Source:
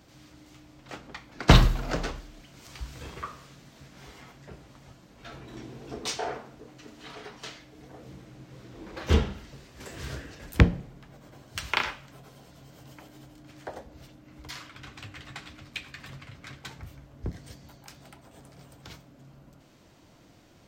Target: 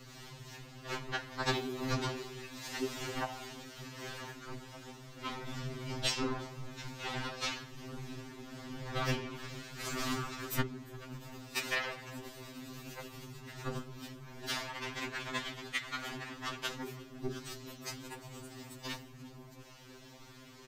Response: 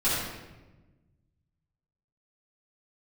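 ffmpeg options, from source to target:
-filter_complex "[0:a]lowshelf=f=270:g=-9,acompressor=threshold=-36dB:ratio=12,afftfilt=real='hypot(re,im)*cos(2*PI*random(0))':imag='hypot(re,im)*sin(2*PI*random(1))':win_size=512:overlap=0.75,afreqshift=-410,asplit=5[a][b][c][d][e];[b]adelay=350,afreqshift=-150,volume=-22dB[f];[c]adelay=700,afreqshift=-300,volume=-26.6dB[g];[d]adelay=1050,afreqshift=-450,volume=-31.2dB[h];[e]adelay=1400,afreqshift=-600,volume=-35.7dB[i];[a][f][g][h][i]amix=inputs=5:normalize=0,afftfilt=real='re*2.45*eq(mod(b,6),0)':imag='im*2.45*eq(mod(b,6),0)':win_size=2048:overlap=0.75,volume=15dB"

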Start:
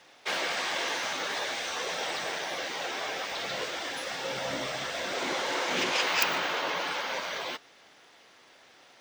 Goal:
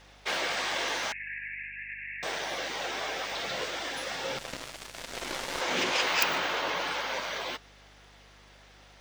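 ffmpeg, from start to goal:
-filter_complex "[0:a]asettb=1/sr,asplit=3[a][b][c];[a]atrim=end=1.124[d];[b]atrim=start=1.12:end=2.23,asetpts=PTS-STARTPTS,afade=t=in:d=0.004:c=qsin,afade=t=out:st=1.106:d=0.004:c=qsin,asuperpass=centerf=2100:order=20:qfactor=2[e];[c]atrim=start=2.226[f];[d][e]acrossfade=d=0.004:c1=hsin:c2=qsin[g];[g][f]acrossfade=d=0.004:c1=qsin:c2=hsin,asettb=1/sr,asplit=3[h][i][j];[h]atrim=end=4.384[k];[i]atrim=start=4.38:end=5.61,asetpts=PTS-STARTPTS,afade=t=in:d=0.004:c=qsin,afade=t=out:st=1.226:d=0.004:c=qsin,aeval=exprs='0.119*(cos(1*acos(clip(val(0)/0.119,-1,1)))-cos(1*PI/2))+0.0188*(cos(3*acos(clip(val(0)/0.119,-1,1)))-cos(3*PI/2))+0.015*(cos(4*acos(clip(val(0)/0.119,-1,1)))-cos(4*PI/2))+0.00596*(cos(6*acos(clip(val(0)/0.119,-1,1)))-cos(6*PI/2))+0.0133*(cos(7*acos(clip(val(0)/0.119,-1,1)))-cos(7*PI/2))':c=same[l];[j]atrim=start=5.606[m];[k][l]acrossfade=d=0.004:c1=hsin:c2=qsin[n];[n][m]acrossfade=d=0.004:c1=qsin:c2=hsin,aeval=exprs='val(0)+0.00126*(sin(2*PI*50*n/s)+sin(2*PI*2*50*n/s)/2+sin(2*PI*3*50*n/s)/3+sin(2*PI*4*50*n/s)/4+sin(2*PI*5*50*n/s)/5)':c=same"

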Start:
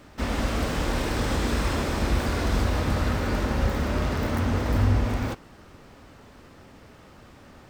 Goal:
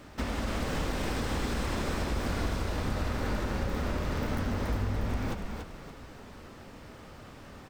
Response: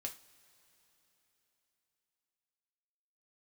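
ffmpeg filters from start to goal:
-filter_complex "[0:a]acompressor=threshold=-29dB:ratio=6,asplit=6[a][b][c][d][e][f];[b]adelay=285,afreqshift=-39,volume=-5dB[g];[c]adelay=570,afreqshift=-78,volume=-13.6dB[h];[d]adelay=855,afreqshift=-117,volume=-22.3dB[i];[e]adelay=1140,afreqshift=-156,volume=-30.9dB[j];[f]adelay=1425,afreqshift=-195,volume=-39.5dB[k];[a][g][h][i][j][k]amix=inputs=6:normalize=0"

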